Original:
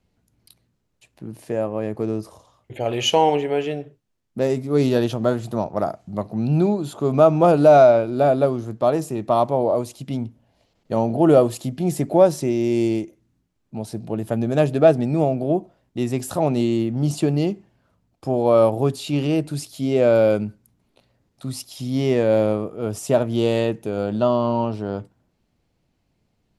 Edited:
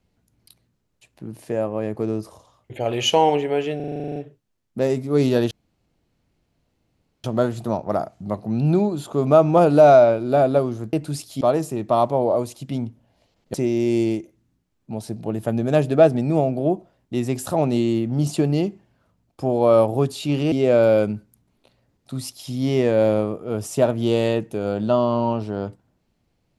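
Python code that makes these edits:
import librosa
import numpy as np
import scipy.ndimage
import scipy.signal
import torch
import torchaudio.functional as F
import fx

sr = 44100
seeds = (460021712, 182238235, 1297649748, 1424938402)

y = fx.edit(x, sr, fx.stutter(start_s=3.76, slice_s=0.04, count=11),
    fx.insert_room_tone(at_s=5.11, length_s=1.73),
    fx.cut(start_s=10.93, length_s=1.45),
    fx.move(start_s=19.36, length_s=0.48, to_s=8.8), tone=tone)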